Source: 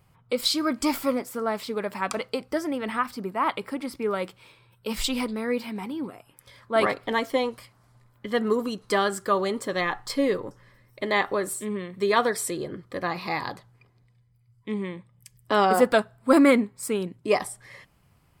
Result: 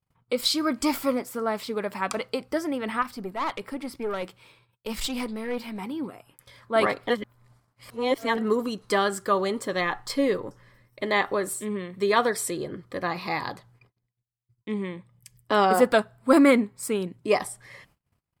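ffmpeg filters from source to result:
ffmpeg -i in.wav -filter_complex "[0:a]asettb=1/sr,asplit=3[link_01][link_02][link_03];[link_01]atrim=end=3.024[link_04];[link_02]atrim=start=3.02:end=5.79,asetpts=PTS-STARTPTS,afade=type=in:duration=0.004:curve=qsin,afade=type=out:start_time=2.766:duration=0.004:curve=qsin,aeval=exprs='(tanh(14.1*val(0)+0.4)-tanh(0.4))/14.1':channel_layout=same[link_05];[link_03]atrim=start=5.786[link_06];[link_04][link_05]acrossfade=duration=0.004:curve1=hsin:curve2=qsin[link_07];[link_07][link_06]acrossfade=duration=0.004:curve1=qsin:curve2=hsin,asplit=3[link_08][link_09][link_10];[link_08]atrim=end=7.102[link_11];[link_09]atrim=start=7.098:end=8.382,asetpts=PTS-STARTPTS,areverse[link_12];[link_10]atrim=start=8.378[link_13];[link_11][link_12]acrossfade=duration=0.004:curve1=hsin:curve2=hsin[link_14];[link_14][link_13]acrossfade=duration=0.004:curve1=hsin:curve2=hsin,agate=range=-31dB:threshold=-58dB:ratio=16:detection=peak" out.wav

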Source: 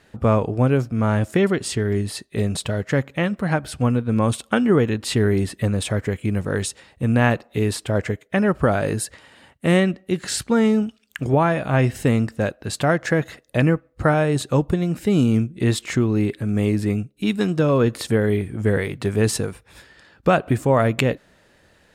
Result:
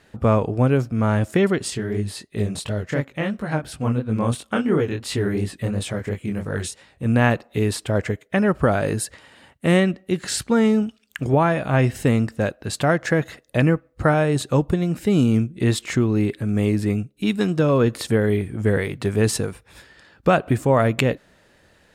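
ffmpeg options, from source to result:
ffmpeg -i in.wav -filter_complex "[0:a]asettb=1/sr,asplit=3[link_01][link_02][link_03];[link_01]atrim=end=1.704[link_04];[link_02]atrim=start=1.7:end=7.06,asetpts=PTS-STARTPTS,afade=type=in:duration=0.004:curve=qsin,afade=type=out:start_time=5.356:duration=0.004:curve=qsin,flanger=delay=18.5:depth=7.5:speed=2.9[link_05];[link_03]atrim=start=7.056[link_06];[link_04][link_05]acrossfade=duration=0.004:curve1=hsin:curve2=qsin[link_07];[link_07][link_06]acrossfade=duration=0.004:curve1=qsin:curve2=hsin" out.wav

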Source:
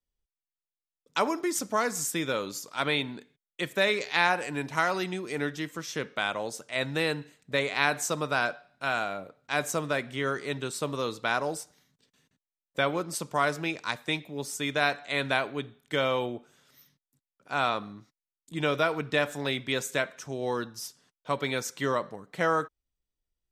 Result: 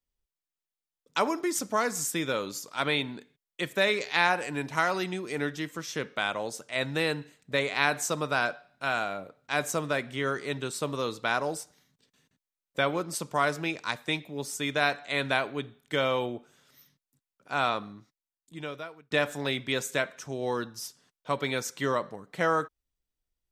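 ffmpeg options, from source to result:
ffmpeg -i in.wav -filter_complex "[0:a]asplit=2[link_01][link_02];[link_01]atrim=end=19.11,asetpts=PTS-STARTPTS,afade=type=out:start_time=17.71:duration=1.4[link_03];[link_02]atrim=start=19.11,asetpts=PTS-STARTPTS,afade=type=in:duration=0.004:curve=hsin[link_04];[link_03][link_04]concat=n=2:v=0:a=1" out.wav

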